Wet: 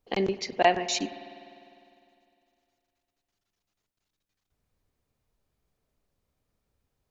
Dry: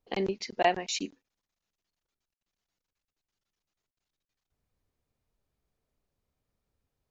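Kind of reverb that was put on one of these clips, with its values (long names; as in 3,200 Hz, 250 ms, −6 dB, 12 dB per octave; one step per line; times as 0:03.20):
spring reverb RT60 2.6 s, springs 50 ms, chirp 50 ms, DRR 13 dB
level +3.5 dB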